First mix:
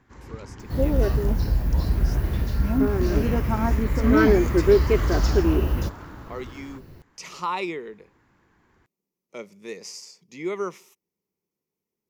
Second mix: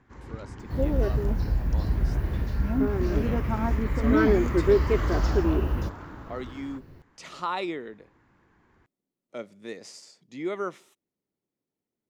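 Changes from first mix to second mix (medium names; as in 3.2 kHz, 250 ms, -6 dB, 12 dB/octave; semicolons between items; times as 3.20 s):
speech: remove rippled EQ curve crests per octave 0.8, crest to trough 8 dB; second sound -3.5 dB; master: add treble shelf 4.4 kHz -8.5 dB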